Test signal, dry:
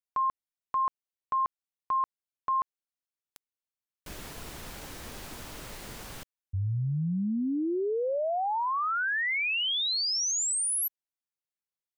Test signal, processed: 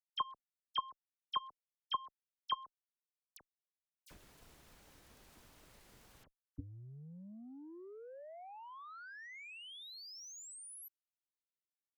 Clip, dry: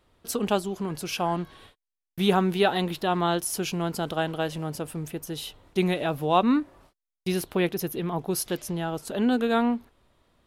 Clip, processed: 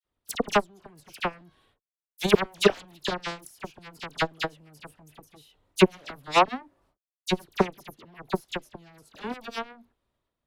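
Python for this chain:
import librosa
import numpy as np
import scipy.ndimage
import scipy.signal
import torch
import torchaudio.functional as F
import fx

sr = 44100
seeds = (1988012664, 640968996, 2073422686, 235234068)

y = fx.transient(x, sr, attack_db=11, sustain_db=7)
y = fx.cheby_harmonics(y, sr, harmonics=(7,), levels_db=(-16,), full_scale_db=0.0)
y = fx.dispersion(y, sr, late='lows', ms=47.0, hz=2200.0)
y = y * 10.0 ** (-2.0 / 20.0)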